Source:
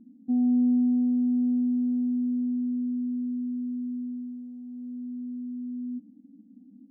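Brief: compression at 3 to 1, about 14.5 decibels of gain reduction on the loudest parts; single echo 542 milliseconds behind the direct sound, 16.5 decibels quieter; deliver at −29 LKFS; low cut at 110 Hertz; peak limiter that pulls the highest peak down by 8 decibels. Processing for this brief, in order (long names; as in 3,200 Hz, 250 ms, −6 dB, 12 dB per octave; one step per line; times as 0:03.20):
high-pass filter 110 Hz
downward compressor 3 to 1, threshold −42 dBFS
brickwall limiter −40.5 dBFS
single-tap delay 542 ms −16.5 dB
level +15.5 dB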